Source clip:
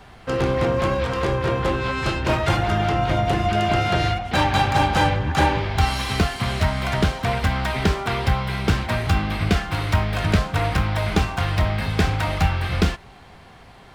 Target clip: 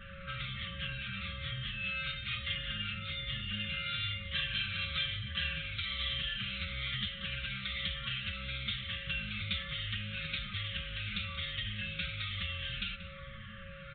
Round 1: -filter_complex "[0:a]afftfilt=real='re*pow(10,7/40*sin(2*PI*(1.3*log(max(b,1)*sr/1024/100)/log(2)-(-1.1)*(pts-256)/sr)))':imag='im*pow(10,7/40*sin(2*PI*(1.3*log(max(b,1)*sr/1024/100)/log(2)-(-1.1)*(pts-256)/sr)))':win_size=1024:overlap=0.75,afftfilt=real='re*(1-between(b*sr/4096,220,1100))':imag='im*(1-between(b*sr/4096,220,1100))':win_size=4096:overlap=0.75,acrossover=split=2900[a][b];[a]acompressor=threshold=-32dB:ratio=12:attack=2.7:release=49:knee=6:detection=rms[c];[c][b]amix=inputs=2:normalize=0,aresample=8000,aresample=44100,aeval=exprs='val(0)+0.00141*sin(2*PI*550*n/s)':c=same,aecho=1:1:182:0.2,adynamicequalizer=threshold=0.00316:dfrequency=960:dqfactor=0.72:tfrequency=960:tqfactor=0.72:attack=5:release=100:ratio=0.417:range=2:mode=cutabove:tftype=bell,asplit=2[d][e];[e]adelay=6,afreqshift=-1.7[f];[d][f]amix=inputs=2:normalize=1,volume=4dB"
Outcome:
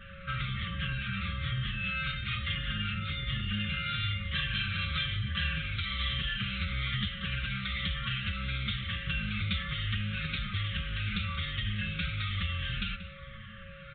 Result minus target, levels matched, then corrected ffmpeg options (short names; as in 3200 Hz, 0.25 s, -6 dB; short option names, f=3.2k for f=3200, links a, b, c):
compressor: peak gain reduction -8 dB
-filter_complex "[0:a]afftfilt=real='re*pow(10,7/40*sin(2*PI*(1.3*log(max(b,1)*sr/1024/100)/log(2)-(-1.1)*(pts-256)/sr)))':imag='im*pow(10,7/40*sin(2*PI*(1.3*log(max(b,1)*sr/1024/100)/log(2)-(-1.1)*(pts-256)/sr)))':win_size=1024:overlap=0.75,afftfilt=real='re*(1-between(b*sr/4096,220,1100))':imag='im*(1-between(b*sr/4096,220,1100))':win_size=4096:overlap=0.75,acrossover=split=2900[a][b];[a]acompressor=threshold=-41dB:ratio=12:attack=2.7:release=49:knee=6:detection=rms[c];[c][b]amix=inputs=2:normalize=0,aresample=8000,aresample=44100,aeval=exprs='val(0)+0.00141*sin(2*PI*550*n/s)':c=same,aecho=1:1:182:0.2,adynamicequalizer=threshold=0.00316:dfrequency=960:dqfactor=0.72:tfrequency=960:tqfactor=0.72:attack=5:release=100:ratio=0.417:range=2:mode=cutabove:tftype=bell,asplit=2[d][e];[e]adelay=6,afreqshift=-1.7[f];[d][f]amix=inputs=2:normalize=1,volume=4dB"